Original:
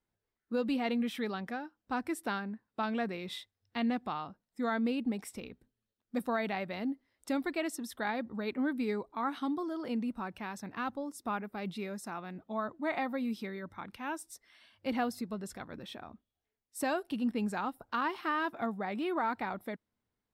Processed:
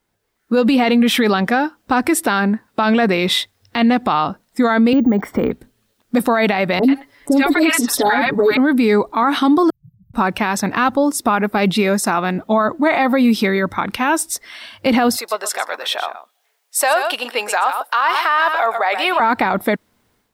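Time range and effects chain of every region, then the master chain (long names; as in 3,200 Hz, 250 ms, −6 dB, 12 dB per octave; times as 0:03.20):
0:04.93–0:05.51: Savitzky-Golay smoothing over 41 samples + bad sample-rate conversion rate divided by 2×, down none, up hold + multiband upward and downward compressor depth 100%
0:06.79–0:08.57: comb filter 7 ms, depth 98% + three-band delay without the direct sound lows, highs, mids 40/90 ms, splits 790/4,500 Hz
0:09.70–0:10.14: linear-phase brick-wall band-stop 160–12,000 Hz + high-frequency loss of the air 370 metres
0:15.16–0:19.20: high-pass filter 570 Hz 24 dB per octave + single-tap delay 122 ms −12 dB
whole clip: low-shelf EQ 250 Hz −5 dB; automatic gain control gain up to 9.5 dB; boost into a limiter +22.5 dB; level −6 dB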